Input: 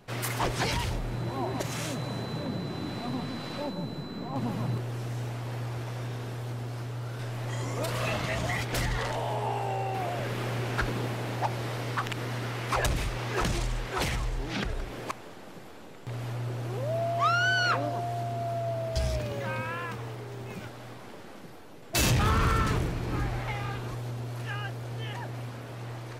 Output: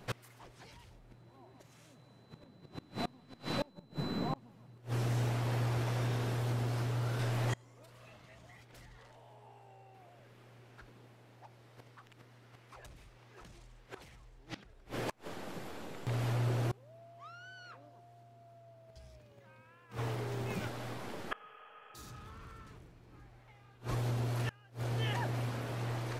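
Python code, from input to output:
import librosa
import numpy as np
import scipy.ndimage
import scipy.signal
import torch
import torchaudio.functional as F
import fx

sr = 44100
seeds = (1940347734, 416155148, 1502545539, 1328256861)

y = fx.spec_repair(x, sr, seeds[0], start_s=21.34, length_s=0.85, low_hz=430.0, high_hz=3400.0, source='after')
y = fx.gate_flip(y, sr, shuts_db=-25.0, range_db=-28)
y = y * 10.0 ** (1.5 / 20.0)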